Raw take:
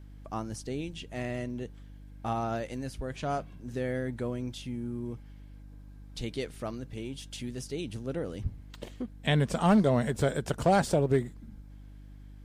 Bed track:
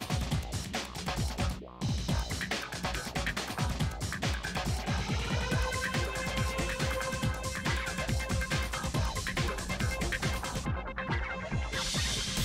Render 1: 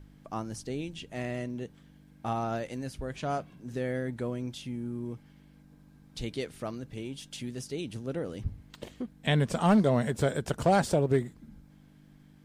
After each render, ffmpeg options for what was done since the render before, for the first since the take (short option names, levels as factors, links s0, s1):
-af "bandreject=f=50:t=h:w=4,bandreject=f=100:t=h:w=4"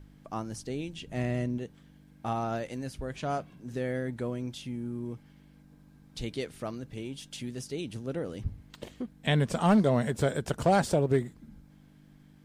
-filter_complex "[0:a]asettb=1/sr,asplit=3[s0][s1][s2];[s0]atrim=end=1.074[s3];[s1]atrim=start=1.07:end=1.58,asetpts=PTS-STARTPTS,afade=t=in:d=0.004:c=qsin,afade=t=out:st=0.506:d=0.004:c=qsin,lowshelf=f=250:g=9[s4];[s2]atrim=start=1.576[s5];[s3][s4]acrossfade=d=0.004:c1=hsin:c2=qsin[s6];[s6][s5]acrossfade=d=0.004:c1=qsin:c2=hsin"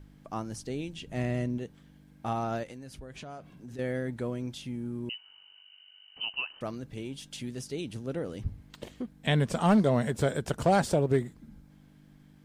-filter_complex "[0:a]asettb=1/sr,asplit=3[s0][s1][s2];[s0]atrim=end=2.634[s3];[s1]atrim=start=2.63:end=3.79,asetpts=PTS-STARTPTS,afade=t=in:d=0.004:c=qsin,afade=t=out:st=1.156:d=0.004:c=qsin,acompressor=threshold=0.01:ratio=6:attack=3.2:release=140:knee=1:detection=peak[s4];[s2]atrim=start=3.786[s5];[s3][s4]acrossfade=d=0.004:c1=hsin:c2=qsin[s6];[s6][s5]acrossfade=d=0.004:c1=qsin:c2=hsin,asettb=1/sr,asplit=3[s7][s8][s9];[s7]atrim=end=5.094[s10];[s8]atrim=start=5.09:end=6.61,asetpts=PTS-STARTPTS,afade=t=in:d=0.004:c=qsin,afade=t=out:st=1.516:d=0.004:c=qsin,lowpass=f=2600:t=q:w=0.5098,lowpass=f=2600:t=q:w=0.6013,lowpass=f=2600:t=q:w=0.9,lowpass=f=2600:t=q:w=2.563,afreqshift=-3100[s11];[s9]atrim=start=6.606[s12];[s10][s11]acrossfade=d=0.004:c1=hsin:c2=qsin[s13];[s13][s12]acrossfade=d=0.004:c1=qsin:c2=hsin"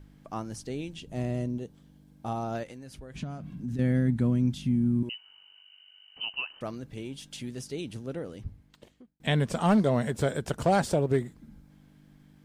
-filter_complex "[0:a]asettb=1/sr,asplit=3[s0][s1][s2];[s0]atrim=end=1.004[s3];[s1]atrim=start=1:end=2.55,asetpts=PTS-STARTPTS,afade=t=in:d=0.004:c=qsin,afade=t=out:st=1.546:d=0.004:c=qsin,equalizer=f=1900:w=1.1:g=-8.5[s4];[s2]atrim=start=2.546[s5];[s3][s4]acrossfade=d=0.004:c1=hsin:c2=qsin[s6];[s6][s5]acrossfade=d=0.004:c1=qsin:c2=hsin,asettb=1/sr,asplit=3[s7][s8][s9];[s7]atrim=end=3.144[s10];[s8]atrim=start=3.14:end=5.03,asetpts=PTS-STARTPTS,afade=t=in:d=0.004:c=qsin,afade=t=out:st=1.886:d=0.004:c=qsin,lowshelf=f=310:t=q:w=1.5:g=10.5[s11];[s9]atrim=start=5.026[s12];[s10][s11]acrossfade=d=0.004:c1=hsin:c2=qsin[s13];[s13][s12]acrossfade=d=0.004:c1=qsin:c2=hsin,asplit=2[s14][s15];[s14]atrim=end=9.2,asetpts=PTS-STARTPTS,afade=t=out:st=7.92:d=1.28[s16];[s15]atrim=start=9.2,asetpts=PTS-STARTPTS,afade=t=in:d=0.004:c=hsin[s17];[s16][s17]concat=n=2:v=0:a=1"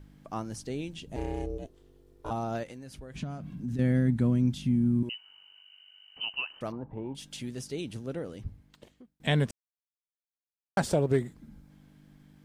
-filter_complex "[0:a]asettb=1/sr,asplit=3[s0][s1][s2];[s0]atrim=end=1.164[s3];[s1]atrim=start=1.16:end=2.31,asetpts=PTS-STARTPTS,afade=t=in:d=0.004:c=qsin,afade=t=out:st=1.146:d=0.004:c=qsin,aeval=exprs='val(0)*sin(2*PI*200*n/s)':c=same[s4];[s2]atrim=start=2.306[s5];[s3][s4]acrossfade=d=0.004:c1=hsin:c2=qsin[s6];[s6][s5]acrossfade=d=0.004:c1=qsin:c2=hsin,asettb=1/sr,asplit=3[s7][s8][s9];[s7]atrim=end=6.724[s10];[s8]atrim=start=6.72:end=7.15,asetpts=PTS-STARTPTS,afade=t=in:d=0.004:c=qsin,afade=t=out:st=0.426:d=0.004:c=qsin,lowpass=f=900:t=q:w=8.7[s11];[s9]atrim=start=7.146[s12];[s10][s11]acrossfade=d=0.004:c1=hsin:c2=qsin[s13];[s13][s12]acrossfade=d=0.004:c1=qsin:c2=hsin,asplit=3[s14][s15][s16];[s14]atrim=end=9.51,asetpts=PTS-STARTPTS,afade=t=out:st=9.506:d=0.004:c=hsin[s17];[s15]atrim=start=9.51:end=10.77,asetpts=PTS-STARTPTS,volume=0[s18];[s16]atrim=start=10.77,asetpts=PTS-STARTPTS,afade=t=in:d=0.004:c=hsin[s19];[s17][s18][s19]concat=n=3:v=0:a=1"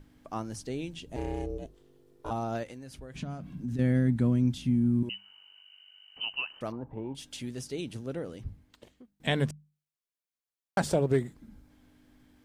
-af "bandreject=f=50:t=h:w=6,bandreject=f=100:t=h:w=6,bandreject=f=150:t=h:w=6,bandreject=f=200:t=h:w=6"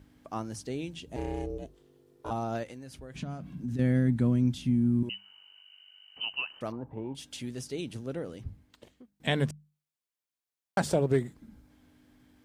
-af "highpass=46"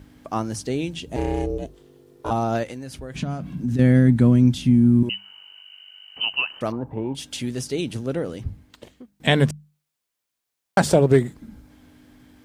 -af "volume=3.16"